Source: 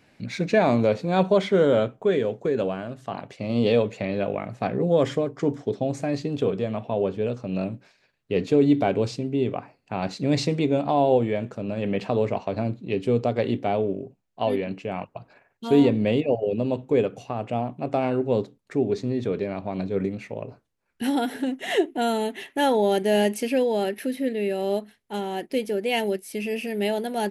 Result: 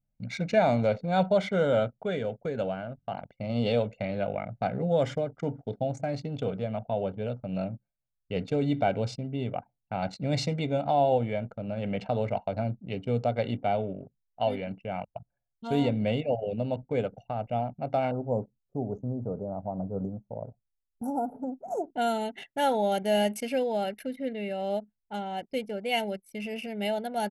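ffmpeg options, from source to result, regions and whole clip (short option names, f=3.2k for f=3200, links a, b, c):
-filter_complex "[0:a]asettb=1/sr,asplit=3[a][b][c];[a]atrim=end=18.114[d];[b]atrim=start=18.11:end=21.96,asetpts=PTS-STARTPTS,afade=t=in:d=0.004:c=qsin,afade=t=out:st=3.846:d=0.004:c=qsin,asuperstop=centerf=2700:order=12:qfactor=0.54,equalizer=f=9.1k:w=4.7:g=-11.5[e];[c]atrim=start=21.956[f];[d][e]acrossfade=d=0.004:c1=hsin:c2=qsin[g];[g][f]acrossfade=d=0.004:c1=qsin:c2=hsin,anlmdn=1.58,aecho=1:1:1.4:0.66,volume=-5.5dB"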